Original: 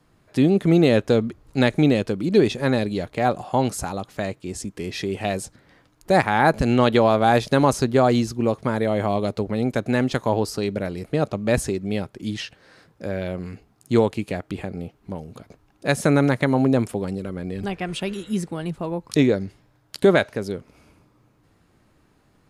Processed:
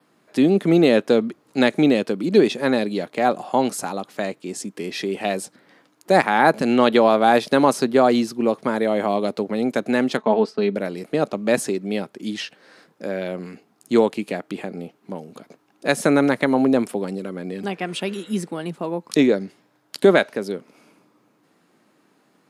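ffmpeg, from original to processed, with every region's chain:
-filter_complex "[0:a]asettb=1/sr,asplit=3[s0][s1][s2];[s0]atrim=end=10.174[s3];[s1]atrim=start=10.17:end=10.75,asetpts=PTS-STARTPTS,afade=t=in:d=0.004:c=qsin,afade=t=out:st=0.576:d=0.004:c=qsin,lowpass=3300,agate=range=0.0224:threshold=0.0178:ratio=3:release=100:detection=peak,aecho=1:1:4.6:0.67,atrim=end_sample=25578[s4];[s2]atrim=start=10.746[s5];[s3][s4]acrossfade=d=0.004:c1=hsin:c2=qsin[s6];[s6][s5]acrossfade=d=0.004:c1=qsin:c2=hsin,highpass=f=190:w=0.5412,highpass=f=190:w=1.3066,adynamicequalizer=threshold=0.00178:dfrequency=6700:dqfactor=3.4:tfrequency=6700:tqfactor=3.4:attack=5:release=100:ratio=0.375:range=2.5:mode=cutabove:tftype=bell,volume=1.26"

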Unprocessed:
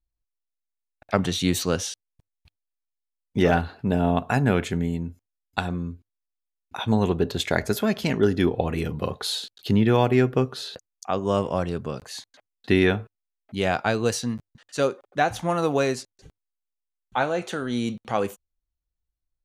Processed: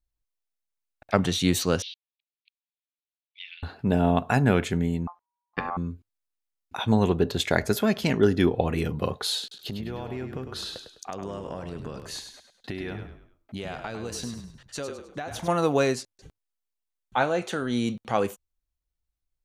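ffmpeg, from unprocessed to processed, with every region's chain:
-filter_complex "[0:a]asettb=1/sr,asplit=3[s0][s1][s2];[s0]atrim=end=1.824[s3];[s1]atrim=start=1.82:end=3.63,asetpts=PTS-STARTPTS,afade=t=in:d=0.004:c=qsin,afade=t=out:st=1.806:d=0.004:c=qsin,acompressor=threshold=0.0891:ratio=4:attack=3.2:release=140:knee=1:detection=peak,asuperpass=centerf=3100:order=8:qfactor=1.5[s4];[s2]atrim=start=3.626[s5];[s3][s4]acrossfade=d=0.004:c1=hsin:c2=qsin[s6];[s6][s5]acrossfade=d=0.004:c1=qsin:c2=hsin,asettb=1/sr,asplit=3[s7][s8][s9];[s7]atrim=end=5.074[s10];[s8]atrim=start=5.07:end=5.77,asetpts=PTS-STARTPTS,afade=t=in:d=0.004:c=qsin,afade=t=out:st=0.696:d=0.004:c=qsin,aeval=exprs='val(0)*sin(2*PI*960*n/s)':c=same,lowpass=2100[s11];[s9]atrim=start=5.766[s12];[s10][s11]acrossfade=d=0.004:c1=hsin:c2=qsin[s13];[s13][s12]acrossfade=d=0.004:c1=qsin:c2=hsin,asettb=1/sr,asplit=3[s14][s15][s16];[s14]atrim=end=9.414[s17];[s15]atrim=start=9.41:end=15.48,asetpts=PTS-STARTPTS,afade=t=in:d=0.004:c=qsin,afade=t=out:st=6.066:d=0.004:c=qsin,acompressor=threshold=0.0316:ratio=10:attack=3.2:release=140:knee=1:detection=peak,asplit=5[s18][s19][s20][s21][s22];[s19]adelay=102,afreqshift=-31,volume=0.422[s23];[s20]adelay=204,afreqshift=-62,volume=0.16[s24];[s21]adelay=306,afreqshift=-93,volume=0.061[s25];[s22]adelay=408,afreqshift=-124,volume=0.0232[s26];[s18][s23][s24][s25][s26]amix=inputs=5:normalize=0,atrim=end_sample=267687[s27];[s16]atrim=start=15.476[s28];[s17][s27]acrossfade=d=0.004:c1=hsin:c2=qsin[s29];[s29][s28]acrossfade=d=0.004:c1=qsin:c2=hsin"

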